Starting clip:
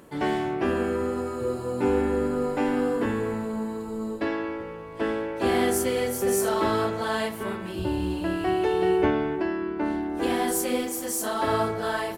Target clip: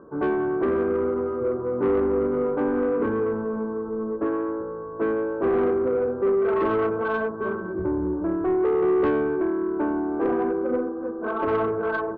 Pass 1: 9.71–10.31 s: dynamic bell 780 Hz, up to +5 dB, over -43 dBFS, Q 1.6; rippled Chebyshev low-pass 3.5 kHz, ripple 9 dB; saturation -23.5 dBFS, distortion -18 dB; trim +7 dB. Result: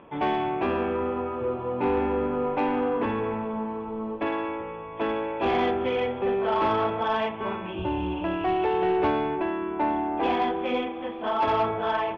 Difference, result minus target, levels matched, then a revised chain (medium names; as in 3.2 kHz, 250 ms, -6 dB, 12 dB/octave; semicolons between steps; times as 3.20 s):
4 kHz band +17.5 dB
9.71–10.31 s: dynamic bell 780 Hz, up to +5 dB, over -43 dBFS, Q 1.6; rippled Chebyshev low-pass 1.6 kHz, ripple 9 dB; saturation -23.5 dBFS, distortion -15 dB; trim +7 dB